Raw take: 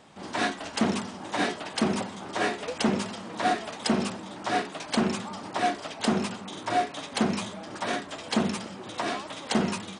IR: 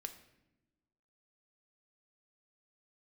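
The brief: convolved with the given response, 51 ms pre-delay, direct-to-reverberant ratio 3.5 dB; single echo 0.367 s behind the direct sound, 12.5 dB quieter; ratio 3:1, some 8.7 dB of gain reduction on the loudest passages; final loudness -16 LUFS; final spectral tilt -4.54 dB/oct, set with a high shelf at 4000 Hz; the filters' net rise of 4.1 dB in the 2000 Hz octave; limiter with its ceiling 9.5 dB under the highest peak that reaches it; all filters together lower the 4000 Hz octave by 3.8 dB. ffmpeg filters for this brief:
-filter_complex "[0:a]equalizer=f=2k:t=o:g=7.5,highshelf=f=4k:g=-7.5,equalizer=f=4k:t=o:g=-3.5,acompressor=threshold=-31dB:ratio=3,alimiter=level_in=2.5dB:limit=-24dB:level=0:latency=1,volume=-2.5dB,aecho=1:1:367:0.237,asplit=2[a][b];[1:a]atrim=start_sample=2205,adelay=51[c];[b][c]afir=irnorm=-1:irlink=0,volume=-0.5dB[d];[a][d]amix=inputs=2:normalize=0,volume=19.5dB"

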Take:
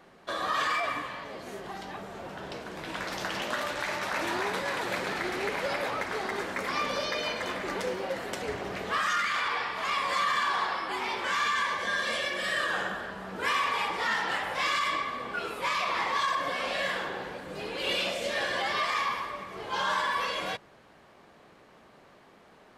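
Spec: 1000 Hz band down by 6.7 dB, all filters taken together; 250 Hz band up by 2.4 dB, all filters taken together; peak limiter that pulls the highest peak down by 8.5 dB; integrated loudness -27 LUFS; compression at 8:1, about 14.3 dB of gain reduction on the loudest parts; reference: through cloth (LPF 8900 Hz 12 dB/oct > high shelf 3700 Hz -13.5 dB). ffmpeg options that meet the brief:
-af "equalizer=f=250:t=o:g=4,equalizer=f=1k:t=o:g=-7,acompressor=threshold=-43dB:ratio=8,alimiter=level_in=13.5dB:limit=-24dB:level=0:latency=1,volume=-13.5dB,lowpass=8.9k,highshelf=f=3.7k:g=-13.5,volume=21.5dB"

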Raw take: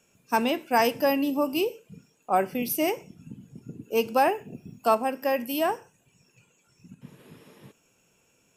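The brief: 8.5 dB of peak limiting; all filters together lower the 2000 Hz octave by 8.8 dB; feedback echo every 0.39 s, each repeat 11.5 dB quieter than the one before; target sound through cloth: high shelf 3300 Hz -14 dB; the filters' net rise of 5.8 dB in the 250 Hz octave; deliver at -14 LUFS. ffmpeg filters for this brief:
-af "equalizer=f=250:t=o:g=7,equalizer=f=2k:t=o:g=-7,alimiter=limit=-17.5dB:level=0:latency=1,highshelf=f=3.3k:g=-14,aecho=1:1:390|780|1170:0.266|0.0718|0.0194,volume=15dB"

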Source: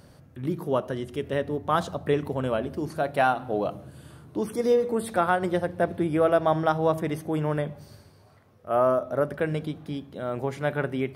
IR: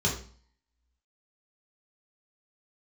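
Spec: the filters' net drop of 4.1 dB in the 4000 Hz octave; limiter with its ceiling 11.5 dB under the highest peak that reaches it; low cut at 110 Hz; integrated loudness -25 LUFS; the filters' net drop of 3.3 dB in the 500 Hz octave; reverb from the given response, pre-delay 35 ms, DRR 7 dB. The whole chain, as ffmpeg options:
-filter_complex "[0:a]highpass=110,equalizer=f=500:t=o:g=-4,equalizer=f=4k:t=o:g=-5.5,alimiter=limit=-22dB:level=0:latency=1,asplit=2[a][b];[1:a]atrim=start_sample=2205,adelay=35[c];[b][c]afir=irnorm=-1:irlink=0,volume=-16.5dB[d];[a][d]amix=inputs=2:normalize=0,volume=7dB"

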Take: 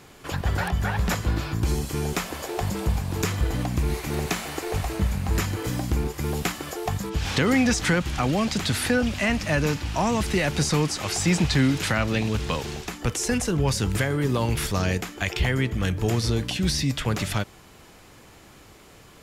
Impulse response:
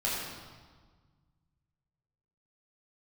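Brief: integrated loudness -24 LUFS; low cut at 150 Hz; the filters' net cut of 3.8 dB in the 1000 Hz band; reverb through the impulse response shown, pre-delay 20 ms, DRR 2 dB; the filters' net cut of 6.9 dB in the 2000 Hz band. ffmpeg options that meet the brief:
-filter_complex "[0:a]highpass=150,equalizer=f=1k:t=o:g=-3,equalizer=f=2k:t=o:g=-8,asplit=2[a][b];[1:a]atrim=start_sample=2205,adelay=20[c];[b][c]afir=irnorm=-1:irlink=0,volume=-10dB[d];[a][d]amix=inputs=2:normalize=0,volume=1.5dB"

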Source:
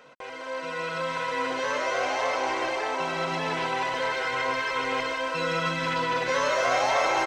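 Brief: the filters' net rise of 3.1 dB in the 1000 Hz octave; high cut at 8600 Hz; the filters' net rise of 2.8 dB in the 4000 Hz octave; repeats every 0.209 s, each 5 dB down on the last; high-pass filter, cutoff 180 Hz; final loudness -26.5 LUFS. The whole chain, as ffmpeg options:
-af "highpass=180,lowpass=8.6k,equalizer=f=1k:t=o:g=3.5,equalizer=f=4k:t=o:g=3.5,aecho=1:1:209|418|627|836|1045|1254|1463:0.562|0.315|0.176|0.0988|0.0553|0.031|0.0173,volume=-3dB"

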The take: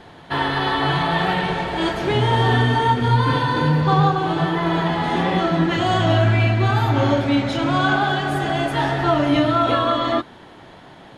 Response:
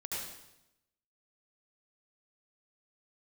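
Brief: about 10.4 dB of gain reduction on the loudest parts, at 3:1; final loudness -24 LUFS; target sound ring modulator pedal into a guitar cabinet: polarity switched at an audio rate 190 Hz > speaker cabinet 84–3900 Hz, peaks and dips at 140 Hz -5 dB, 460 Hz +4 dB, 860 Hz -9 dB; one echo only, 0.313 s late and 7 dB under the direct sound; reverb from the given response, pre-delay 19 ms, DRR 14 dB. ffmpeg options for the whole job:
-filter_complex "[0:a]acompressor=threshold=-27dB:ratio=3,aecho=1:1:313:0.447,asplit=2[a][b];[1:a]atrim=start_sample=2205,adelay=19[c];[b][c]afir=irnorm=-1:irlink=0,volume=-16dB[d];[a][d]amix=inputs=2:normalize=0,aeval=exprs='val(0)*sgn(sin(2*PI*190*n/s))':c=same,highpass=84,equalizer=f=140:t=q:w=4:g=-5,equalizer=f=460:t=q:w=4:g=4,equalizer=f=860:t=q:w=4:g=-9,lowpass=f=3.9k:w=0.5412,lowpass=f=3.9k:w=1.3066,volume=3.5dB"

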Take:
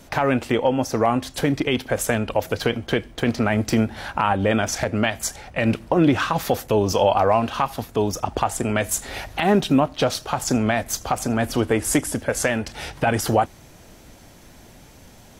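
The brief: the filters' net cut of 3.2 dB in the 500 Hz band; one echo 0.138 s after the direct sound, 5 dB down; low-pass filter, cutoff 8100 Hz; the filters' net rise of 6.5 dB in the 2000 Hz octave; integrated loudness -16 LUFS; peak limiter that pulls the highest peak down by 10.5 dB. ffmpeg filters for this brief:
-af "lowpass=8.1k,equalizer=f=500:t=o:g=-4.5,equalizer=f=2k:t=o:g=8.5,alimiter=limit=-13.5dB:level=0:latency=1,aecho=1:1:138:0.562,volume=8.5dB"

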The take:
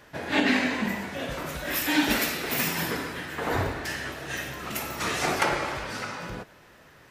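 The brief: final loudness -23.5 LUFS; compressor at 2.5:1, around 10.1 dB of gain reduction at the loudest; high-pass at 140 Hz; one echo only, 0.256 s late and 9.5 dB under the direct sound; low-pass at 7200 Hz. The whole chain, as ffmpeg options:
-af "highpass=140,lowpass=7.2k,acompressor=threshold=-34dB:ratio=2.5,aecho=1:1:256:0.335,volume=10.5dB"

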